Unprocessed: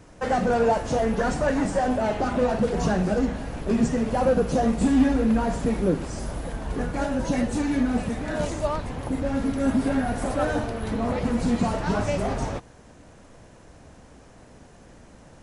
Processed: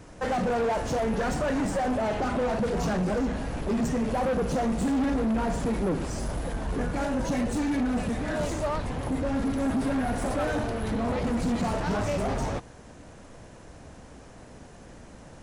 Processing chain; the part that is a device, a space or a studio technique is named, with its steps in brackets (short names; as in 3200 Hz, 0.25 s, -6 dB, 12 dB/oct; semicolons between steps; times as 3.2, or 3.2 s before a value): saturation between pre-emphasis and de-emphasis (high shelf 2200 Hz +9.5 dB; soft clip -24.5 dBFS, distortion -9 dB; high shelf 2200 Hz -9.5 dB); gain +2 dB